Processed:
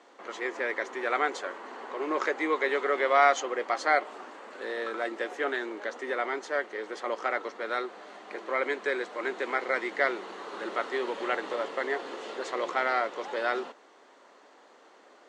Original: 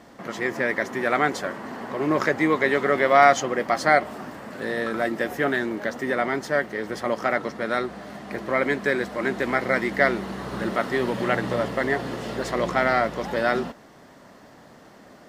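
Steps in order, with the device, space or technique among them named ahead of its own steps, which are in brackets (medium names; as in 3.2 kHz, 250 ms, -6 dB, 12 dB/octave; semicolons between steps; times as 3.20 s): phone speaker on a table (cabinet simulation 370–7400 Hz, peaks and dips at 640 Hz -6 dB, 1.8 kHz -4 dB, 5.2 kHz -7 dB); trim -3.5 dB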